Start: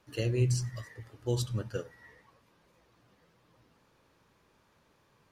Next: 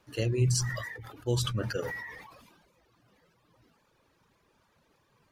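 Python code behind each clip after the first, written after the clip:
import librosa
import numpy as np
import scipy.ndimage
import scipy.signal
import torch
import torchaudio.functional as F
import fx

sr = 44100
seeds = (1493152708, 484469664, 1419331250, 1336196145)

y = fx.dereverb_blind(x, sr, rt60_s=1.2)
y = fx.sustainer(y, sr, db_per_s=40.0)
y = F.gain(torch.from_numpy(y), 1.5).numpy()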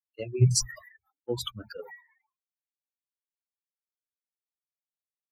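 y = fx.bin_expand(x, sr, power=3.0)
y = fx.band_widen(y, sr, depth_pct=100)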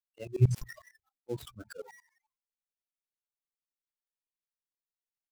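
y = fx.dead_time(x, sr, dead_ms=0.092)
y = fx.tremolo_shape(y, sr, shape='saw_up', hz=11.0, depth_pct=95)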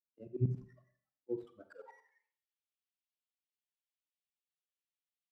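y = fx.filter_sweep_bandpass(x, sr, from_hz=240.0, to_hz=3000.0, start_s=1.15, end_s=2.37, q=2.3)
y = fx.rev_schroeder(y, sr, rt60_s=0.56, comb_ms=32, drr_db=10.0)
y = F.gain(torch.from_numpy(y), 1.0).numpy()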